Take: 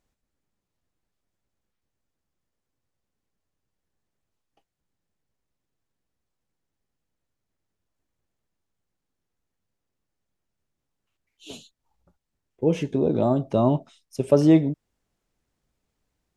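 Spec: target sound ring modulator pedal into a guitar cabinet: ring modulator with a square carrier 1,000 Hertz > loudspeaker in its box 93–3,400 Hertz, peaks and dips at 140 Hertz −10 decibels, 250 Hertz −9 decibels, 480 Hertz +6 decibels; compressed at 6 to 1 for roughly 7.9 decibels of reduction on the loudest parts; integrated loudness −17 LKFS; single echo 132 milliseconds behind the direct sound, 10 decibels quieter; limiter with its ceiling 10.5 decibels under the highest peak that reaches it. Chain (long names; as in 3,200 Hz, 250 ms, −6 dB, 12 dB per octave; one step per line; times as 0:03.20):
downward compressor 6 to 1, threshold −19 dBFS
brickwall limiter −19 dBFS
single-tap delay 132 ms −10 dB
ring modulator with a square carrier 1,000 Hz
loudspeaker in its box 93–3,400 Hz, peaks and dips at 140 Hz −10 dB, 250 Hz −9 dB, 480 Hz +6 dB
level +13 dB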